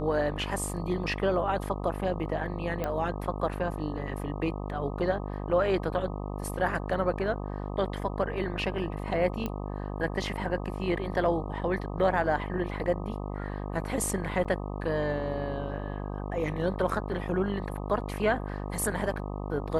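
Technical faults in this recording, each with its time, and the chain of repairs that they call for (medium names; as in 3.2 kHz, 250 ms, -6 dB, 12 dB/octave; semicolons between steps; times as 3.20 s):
buzz 50 Hz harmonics 25 -35 dBFS
2.84 s: pop -18 dBFS
9.46 s: pop -19 dBFS
14.44–14.45 s: dropout 6.6 ms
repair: de-click; de-hum 50 Hz, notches 25; interpolate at 14.44 s, 6.6 ms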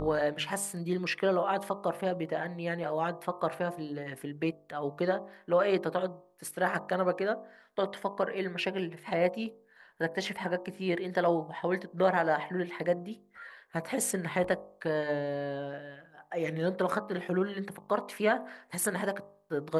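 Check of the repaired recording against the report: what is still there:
nothing left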